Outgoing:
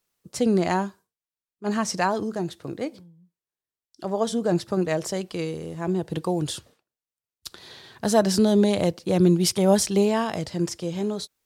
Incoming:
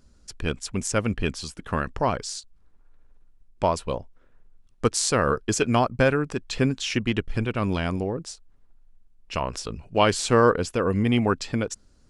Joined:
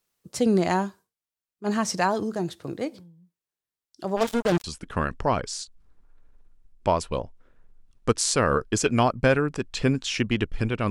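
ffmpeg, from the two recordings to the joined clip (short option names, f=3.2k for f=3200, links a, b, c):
-filter_complex "[0:a]asplit=3[a][b][c];[a]afade=t=out:st=4.16:d=0.02[d];[b]acrusher=bits=3:mix=0:aa=0.5,afade=t=in:st=4.16:d=0.02,afade=t=out:st=4.64:d=0.02[e];[c]afade=t=in:st=4.64:d=0.02[f];[d][e][f]amix=inputs=3:normalize=0,apad=whole_dur=10.9,atrim=end=10.9,atrim=end=4.642[g];[1:a]atrim=start=1.398:end=7.66[h];[g][h]acrossfade=d=0.004:c1=hsin:c2=hsin"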